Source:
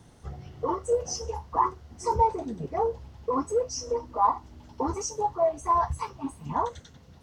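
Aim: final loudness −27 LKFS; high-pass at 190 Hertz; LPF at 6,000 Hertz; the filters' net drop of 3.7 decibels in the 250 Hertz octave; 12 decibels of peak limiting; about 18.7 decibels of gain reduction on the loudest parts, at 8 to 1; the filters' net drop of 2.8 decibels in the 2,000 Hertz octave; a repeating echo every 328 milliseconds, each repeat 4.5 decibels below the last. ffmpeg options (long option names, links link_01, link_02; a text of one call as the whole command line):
ffmpeg -i in.wav -af "highpass=190,lowpass=6000,equalizer=frequency=250:width_type=o:gain=-3.5,equalizer=frequency=2000:width_type=o:gain=-3.5,acompressor=threshold=-38dB:ratio=8,alimiter=level_in=14dB:limit=-24dB:level=0:latency=1,volume=-14dB,aecho=1:1:328|656|984|1312|1640|1968|2296|2624|2952:0.596|0.357|0.214|0.129|0.0772|0.0463|0.0278|0.0167|0.01,volume=19dB" out.wav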